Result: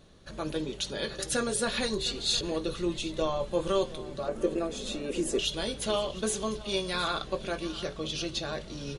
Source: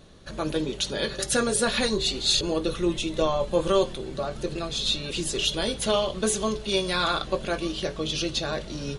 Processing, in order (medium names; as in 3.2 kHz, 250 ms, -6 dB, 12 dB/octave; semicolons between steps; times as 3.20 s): 4.28–5.39 s: graphic EQ 125/250/500/2000/4000/8000 Hz -10/+10/+8/+3/-11/+3 dB; on a send: delay 711 ms -17.5 dB; on the sum: trim -5.5 dB